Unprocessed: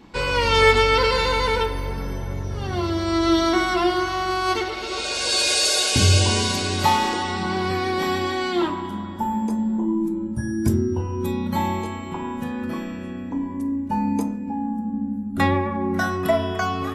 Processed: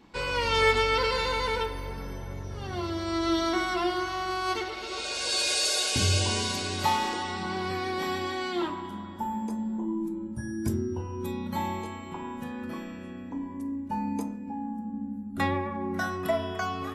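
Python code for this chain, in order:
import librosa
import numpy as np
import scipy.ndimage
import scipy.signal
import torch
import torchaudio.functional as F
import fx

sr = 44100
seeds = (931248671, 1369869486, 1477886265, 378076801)

y = fx.low_shelf(x, sr, hz=350.0, db=-3.0)
y = F.gain(torch.from_numpy(y), -6.5).numpy()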